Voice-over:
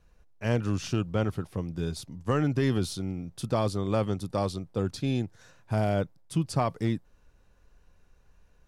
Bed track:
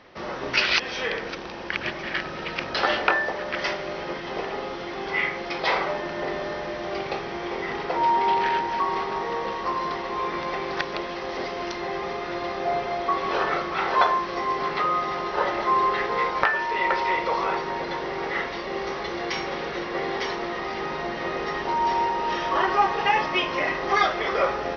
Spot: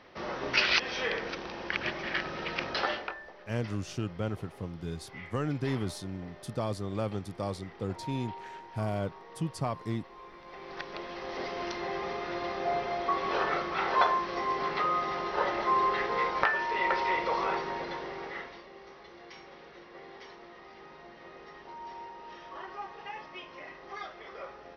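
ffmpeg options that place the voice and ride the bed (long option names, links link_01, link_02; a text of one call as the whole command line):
ffmpeg -i stem1.wav -i stem2.wav -filter_complex "[0:a]adelay=3050,volume=-6dB[link_01];[1:a]volume=12.5dB,afade=type=out:start_time=2.66:duration=0.48:silence=0.133352,afade=type=in:start_time=10.43:duration=1.16:silence=0.149624,afade=type=out:start_time=17.55:duration=1.17:silence=0.16788[link_02];[link_01][link_02]amix=inputs=2:normalize=0" out.wav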